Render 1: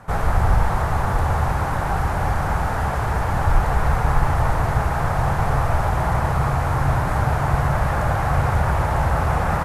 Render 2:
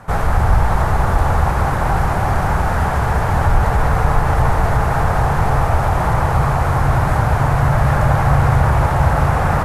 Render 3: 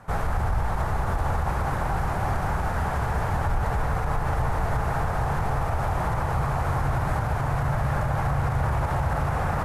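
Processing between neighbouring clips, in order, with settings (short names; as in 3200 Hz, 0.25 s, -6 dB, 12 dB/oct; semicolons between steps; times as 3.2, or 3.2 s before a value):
in parallel at -1.5 dB: limiter -12.5 dBFS, peak gain reduction 7.5 dB; on the sum: darkening echo 0.217 s, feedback 82%, low-pass 2000 Hz, level -9 dB; gain -1 dB
limiter -7.5 dBFS, peak gain reduction 5.5 dB; gain -8.5 dB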